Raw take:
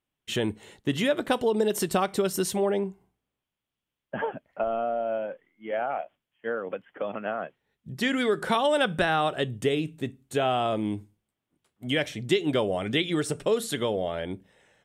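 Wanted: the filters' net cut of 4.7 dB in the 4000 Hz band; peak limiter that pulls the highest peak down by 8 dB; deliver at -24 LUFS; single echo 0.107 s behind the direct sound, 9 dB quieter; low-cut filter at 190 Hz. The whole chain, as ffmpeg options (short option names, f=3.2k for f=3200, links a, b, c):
-af "highpass=190,equalizer=f=4k:t=o:g=-6.5,alimiter=limit=-19.5dB:level=0:latency=1,aecho=1:1:107:0.355,volume=6.5dB"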